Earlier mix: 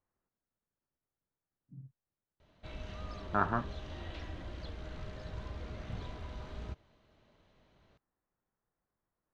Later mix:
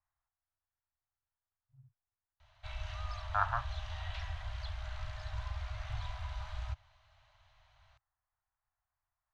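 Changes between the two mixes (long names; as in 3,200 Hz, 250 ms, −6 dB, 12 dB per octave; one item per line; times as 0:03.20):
background +4.0 dB
master: add inverse Chebyshev band-stop filter 170–460 Hz, stop band 40 dB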